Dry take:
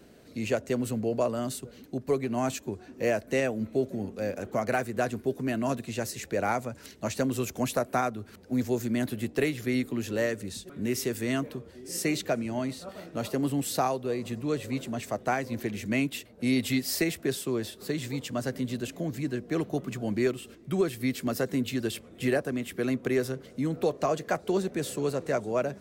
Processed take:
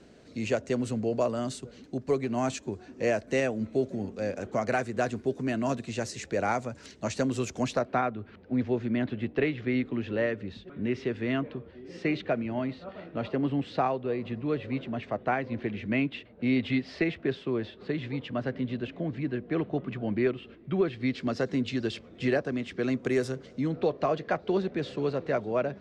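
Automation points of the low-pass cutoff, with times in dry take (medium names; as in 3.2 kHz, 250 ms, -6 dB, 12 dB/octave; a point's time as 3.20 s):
low-pass 24 dB/octave
7.59 s 7.6 kHz
8.04 s 3.3 kHz
20.80 s 3.3 kHz
21.40 s 5.5 kHz
22.80 s 5.5 kHz
23.19 s 9.2 kHz
23.86 s 4.2 kHz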